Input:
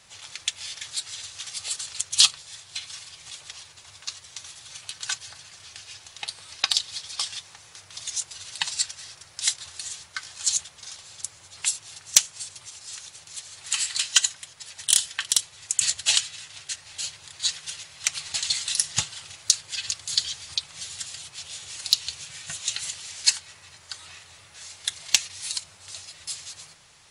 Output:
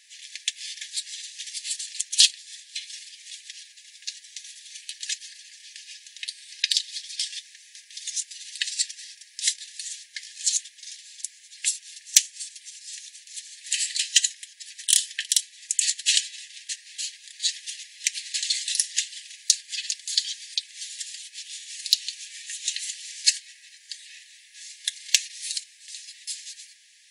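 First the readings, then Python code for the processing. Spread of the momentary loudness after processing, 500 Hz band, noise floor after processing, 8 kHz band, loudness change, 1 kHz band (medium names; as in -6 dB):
19 LU, no reading, -53 dBFS, 0.0 dB, 0.0 dB, under -40 dB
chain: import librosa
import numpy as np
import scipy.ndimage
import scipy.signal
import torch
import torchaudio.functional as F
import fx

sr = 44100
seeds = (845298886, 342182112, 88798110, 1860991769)

y = fx.brickwall_highpass(x, sr, low_hz=1600.0)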